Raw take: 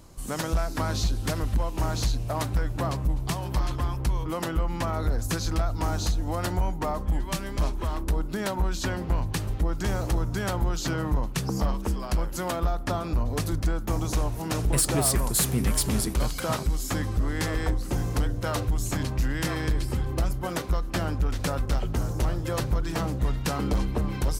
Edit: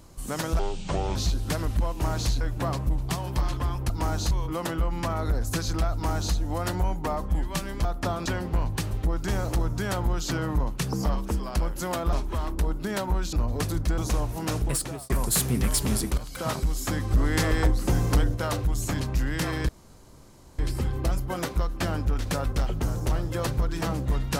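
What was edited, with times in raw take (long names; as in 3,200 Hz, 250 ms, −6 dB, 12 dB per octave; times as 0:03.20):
0:00.59–0:00.93: play speed 60%
0:02.18–0:02.59: remove
0:05.70–0:06.11: duplicate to 0:04.08
0:07.62–0:08.82: swap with 0:12.69–0:13.10
0:13.75–0:14.01: remove
0:14.57–0:15.13: fade out
0:16.21–0:16.58: fade in, from −15.5 dB
0:17.14–0:18.38: clip gain +4 dB
0:19.72: splice in room tone 0.90 s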